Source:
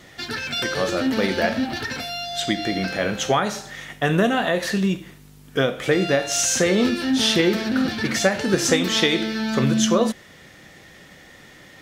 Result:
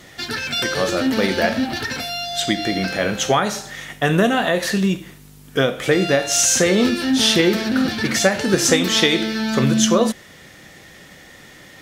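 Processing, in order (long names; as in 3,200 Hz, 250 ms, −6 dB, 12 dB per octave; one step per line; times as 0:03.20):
parametric band 12,000 Hz +4 dB 1.7 octaves
level +2.5 dB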